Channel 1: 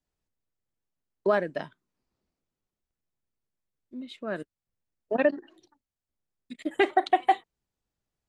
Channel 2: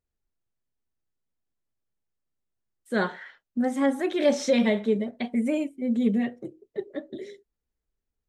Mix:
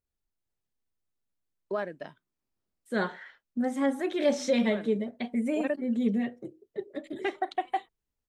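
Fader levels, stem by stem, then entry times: −8.0, −3.5 decibels; 0.45, 0.00 seconds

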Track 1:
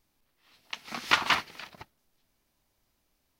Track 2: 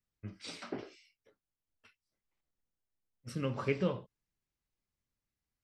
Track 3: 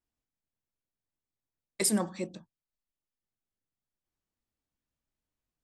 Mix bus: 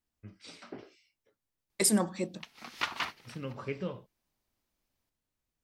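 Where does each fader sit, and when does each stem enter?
−9.5, −4.5, +1.5 decibels; 1.70, 0.00, 0.00 seconds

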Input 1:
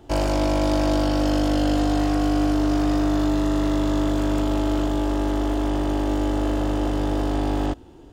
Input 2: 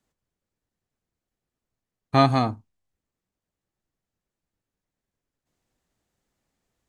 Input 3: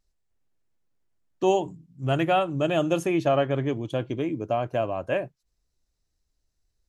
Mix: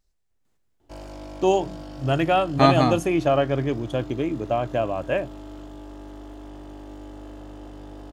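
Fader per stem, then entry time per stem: −17.5, +1.0, +2.0 decibels; 0.80, 0.45, 0.00 seconds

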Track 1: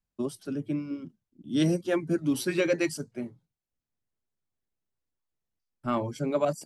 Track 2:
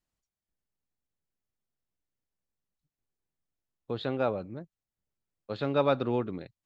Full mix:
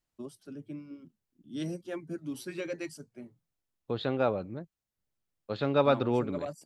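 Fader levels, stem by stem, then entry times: −11.0, +1.0 decibels; 0.00, 0.00 seconds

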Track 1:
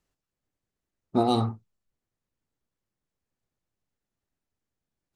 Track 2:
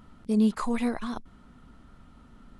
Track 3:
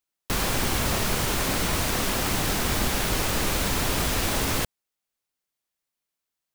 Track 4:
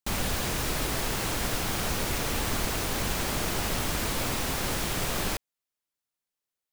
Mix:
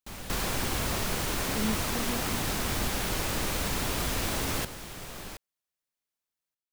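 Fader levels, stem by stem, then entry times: muted, −10.0 dB, −5.5 dB, −12.0 dB; muted, 1.25 s, 0.00 s, 0.00 s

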